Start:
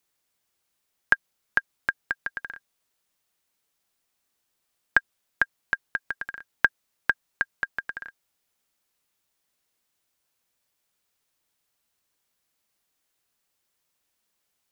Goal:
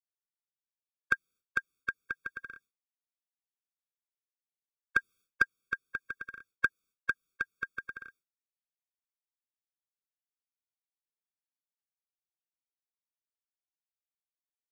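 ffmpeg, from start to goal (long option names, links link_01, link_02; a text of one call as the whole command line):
ffmpeg -i in.wav -filter_complex "[0:a]asplit=3[link_01][link_02][link_03];[link_01]afade=type=out:start_time=4.97:duration=0.02[link_04];[link_02]acontrast=50,afade=type=in:start_time=4.97:duration=0.02,afade=type=out:start_time=5.42:duration=0.02[link_05];[link_03]afade=type=in:start_time=5.42:duration=0.02[link_06];[link_04][link_05][link_06]amix=inputs=3:normalize=0,agate=range=-33dB:threshold=-49dB:ratio=3:detection=peak,afftfilt=real='re*eq(mod(floor(b*sr/1024/540),2),0)':imag='im*eq(mod(floor(b*sr/1024/540),2),0)':win_size=1024:overlap=0.75,volume=-4dB" out.wav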